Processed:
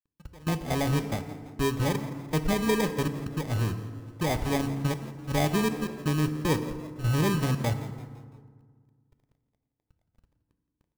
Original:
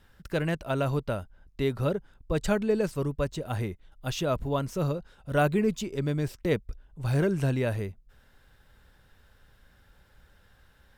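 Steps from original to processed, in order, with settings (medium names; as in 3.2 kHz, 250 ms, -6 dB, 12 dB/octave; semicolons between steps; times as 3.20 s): low-pass 2.7 kHz 12 dB/octave; bass shelf 480 Hz +8 dB; sample-rate reducer 1.4 kHz, jitter 0%; crossover distortion -45 dBFS; trance gate "x.x..xxxxx" 161 bpm -24 dB; compression, threshold -17 dBFS, peak gain reduction 3.5 dB; on a send: frequency-shifting echo 169 ms, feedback 46%, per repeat +79 Hz, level -17 dB; on the sum: FDN reverb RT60 1.7 s, low-frequency decay 1.3×, high-frequency decay 0.55×, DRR 9 dB; trim -3.5 dB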